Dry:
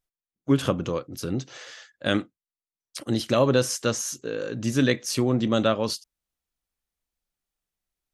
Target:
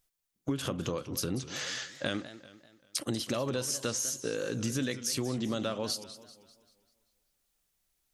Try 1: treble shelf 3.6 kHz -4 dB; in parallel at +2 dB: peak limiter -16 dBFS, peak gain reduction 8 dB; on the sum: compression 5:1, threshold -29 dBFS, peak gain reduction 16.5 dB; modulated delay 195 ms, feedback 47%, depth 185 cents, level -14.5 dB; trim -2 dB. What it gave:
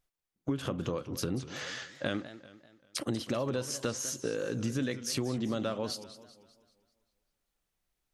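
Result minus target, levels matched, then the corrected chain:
8 kHz band -3.5 dB
treble shelf 3.6 kHz +6.5 dB; in parallel at +2 dB: peak limiter -16 dBFS, peak gain reduction 9.5 dB; on the sum: compression 5:1, threshold -29 dBFS, peak gain reduction 16.5 dB; modulated delay 195 ms, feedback 47%, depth 185 cents, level -14.5 dB; trim -2 dB

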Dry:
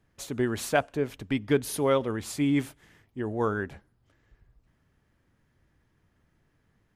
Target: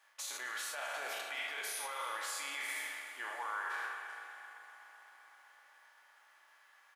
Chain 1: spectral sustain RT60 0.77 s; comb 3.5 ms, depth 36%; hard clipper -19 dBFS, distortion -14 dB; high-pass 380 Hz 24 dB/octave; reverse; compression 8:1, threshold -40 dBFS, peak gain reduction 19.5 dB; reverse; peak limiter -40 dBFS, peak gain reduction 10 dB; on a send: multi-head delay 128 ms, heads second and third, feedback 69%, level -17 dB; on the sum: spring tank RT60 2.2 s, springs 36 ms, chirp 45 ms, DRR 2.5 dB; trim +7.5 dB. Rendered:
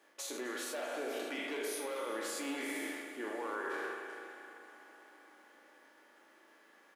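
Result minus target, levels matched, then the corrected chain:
hard clipper: distortion +37 dB; 500 Hz band +11.0 dB
spectral sustain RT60 0.77 s; comb 3.5 ms, depth 36%; hard clipper -9 dBFS, distortion -50 dB; high-pass 820 Hz 24 dB/octave; reverse; compression 8:1, threshold -40 dBFS, peak gain reduction 18.5 dB; reverse; peak limiter -40 dBFS, peak gain reduction 11 dB; on a send: multi-head delay 128 ms, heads second and third, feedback 69%, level -17 dB; on the sum: spring tank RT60 2.2 s, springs 36 ms, chirp 45 ms, DRR 2.5 dB; trim +7.5 dB

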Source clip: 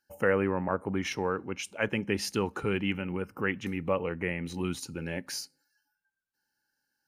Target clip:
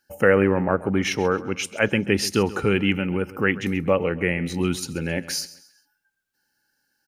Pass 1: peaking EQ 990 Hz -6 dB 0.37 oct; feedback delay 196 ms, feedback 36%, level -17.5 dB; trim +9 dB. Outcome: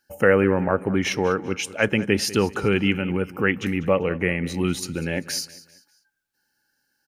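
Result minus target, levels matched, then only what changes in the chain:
echo 62 ms late
change: feedback delay 134 ms, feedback 36%, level -17.5 dB

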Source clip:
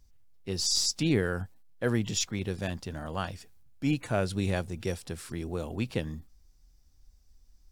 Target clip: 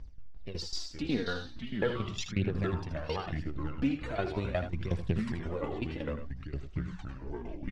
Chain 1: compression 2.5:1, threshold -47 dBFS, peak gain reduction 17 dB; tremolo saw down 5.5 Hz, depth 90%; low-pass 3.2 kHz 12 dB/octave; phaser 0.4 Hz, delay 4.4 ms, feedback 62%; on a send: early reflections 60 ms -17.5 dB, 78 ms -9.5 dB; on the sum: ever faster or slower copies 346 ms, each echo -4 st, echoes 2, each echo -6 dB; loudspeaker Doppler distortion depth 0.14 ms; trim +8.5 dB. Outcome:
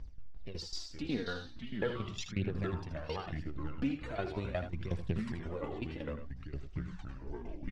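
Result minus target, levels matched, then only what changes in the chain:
compression: peak gain reduction +4 dB
change: compression 2.5:1, threshold -40 dBFS, peak gain reduction 12.5 dB

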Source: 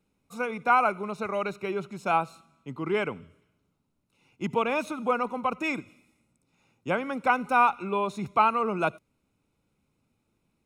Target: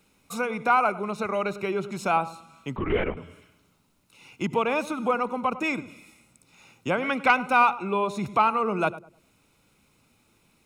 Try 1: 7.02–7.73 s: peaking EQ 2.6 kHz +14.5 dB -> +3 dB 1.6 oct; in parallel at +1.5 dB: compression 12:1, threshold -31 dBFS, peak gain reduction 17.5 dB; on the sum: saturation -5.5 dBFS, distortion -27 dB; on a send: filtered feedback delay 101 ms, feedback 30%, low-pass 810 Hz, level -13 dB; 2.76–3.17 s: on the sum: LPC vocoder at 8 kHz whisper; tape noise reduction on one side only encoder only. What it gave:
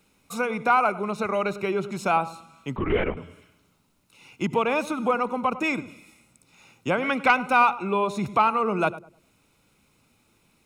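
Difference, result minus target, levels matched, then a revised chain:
compression: peak gain reduction -6 dB
7.02–7.73 s: peaking EQ 2.6 kHz +14.5 dB -> +3 dB 1.6 oct; in parallel at +1.5 dB: compression 12:1, threshold -37.5 dBFS, peak gain reduction 23.5 dB; on the sum: saturation -5.5 dBFS, distortion -28 dB; on a send: filtered feedback delay 101 ms, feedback 30%, low-pass 810 Hz, level -13 dB; 2.76–3.17 s: on the sum: LPC vocoder at 8 kHz whisper; tape noise reduction on one side only encoder only

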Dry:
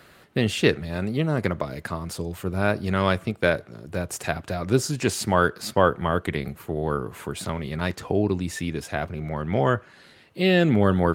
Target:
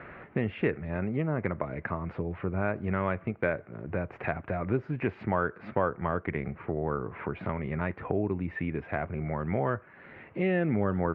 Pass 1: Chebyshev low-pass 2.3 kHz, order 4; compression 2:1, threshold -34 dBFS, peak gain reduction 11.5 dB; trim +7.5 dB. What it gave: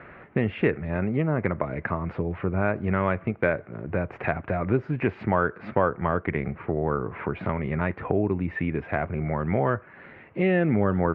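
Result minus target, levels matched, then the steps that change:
compression: peak gain reduction -5 dB
change: compression 2:1, threshold -44 dBFS, peak gain reduction 16.5 dB

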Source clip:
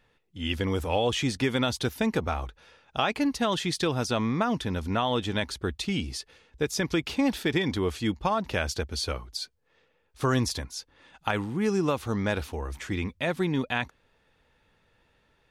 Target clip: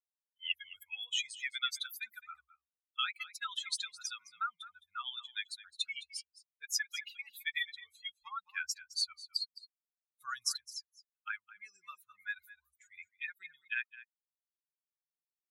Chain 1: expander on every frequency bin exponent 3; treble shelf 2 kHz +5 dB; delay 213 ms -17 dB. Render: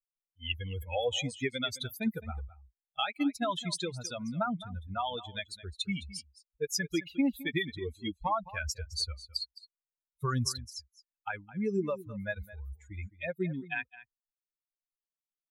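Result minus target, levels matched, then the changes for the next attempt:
1 kHz band +4.0 dB
add after expander on every frequency bin: elliptic high-pass 1.3 kHz, stop band 50 dB

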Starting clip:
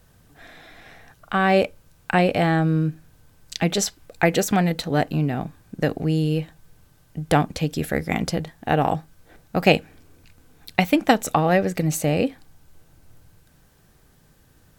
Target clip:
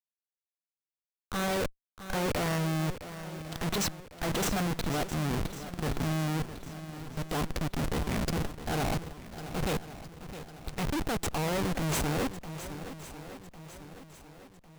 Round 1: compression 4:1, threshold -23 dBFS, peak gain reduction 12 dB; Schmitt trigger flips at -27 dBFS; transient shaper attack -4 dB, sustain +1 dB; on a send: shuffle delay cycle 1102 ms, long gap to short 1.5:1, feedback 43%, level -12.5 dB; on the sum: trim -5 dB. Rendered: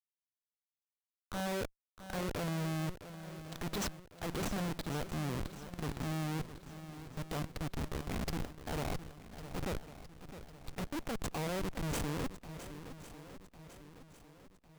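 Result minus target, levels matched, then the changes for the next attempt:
compression: peak gain reduction +12 dB
remove: compression 4:1, threshold -23 dBFS, peak gain reduction 12 dB

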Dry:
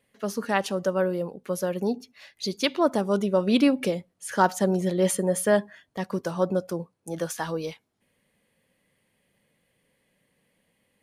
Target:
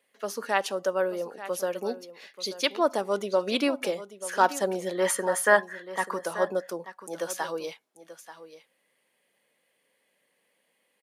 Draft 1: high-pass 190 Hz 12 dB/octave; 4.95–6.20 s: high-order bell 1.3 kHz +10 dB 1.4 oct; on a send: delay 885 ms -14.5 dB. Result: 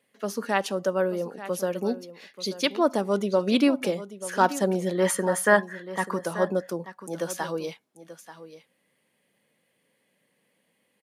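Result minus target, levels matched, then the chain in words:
250 Hz band +5.5 dB
high-pass 420 Hz 12 dB/octave; 4.95–6.20 s: high-order bell 1.3 kHz +10 dB 1.4 oct; on a send: delay 885 ms -14.5 dB

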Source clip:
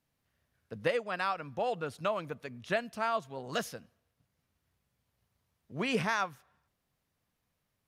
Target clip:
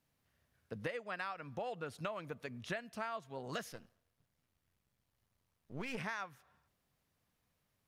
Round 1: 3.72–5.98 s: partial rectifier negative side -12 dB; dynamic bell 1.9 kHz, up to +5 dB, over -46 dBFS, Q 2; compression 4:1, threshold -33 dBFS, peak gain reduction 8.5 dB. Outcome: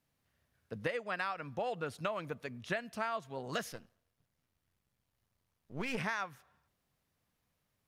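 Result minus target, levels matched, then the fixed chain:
compression: peak gain reduction -5 dB
3.72–5.98 s: partial rectifier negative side -12 dB; dynamic bell 1.9 kHz, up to +5 dB, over -46 dBFS, Q 2; compression 4:1, threshold -39.5 dBFS, peak gain reduction 13.5 dB

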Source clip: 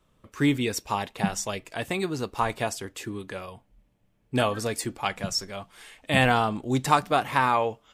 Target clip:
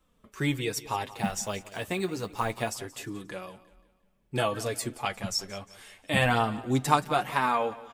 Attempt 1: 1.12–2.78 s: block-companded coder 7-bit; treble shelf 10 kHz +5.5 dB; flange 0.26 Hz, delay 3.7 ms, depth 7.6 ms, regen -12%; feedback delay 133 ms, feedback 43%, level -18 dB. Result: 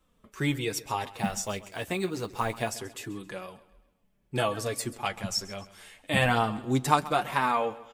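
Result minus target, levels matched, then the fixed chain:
echo 44 ms early
1.12–2.78 s: block-companded coder 7-bit; treble shelf 10 kHz +5.5 dB; flange 0.26 Hz, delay 3.7 ms, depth 7.6 ms, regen -12%; feedback delay 177 ms, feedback 43%, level -18 dB

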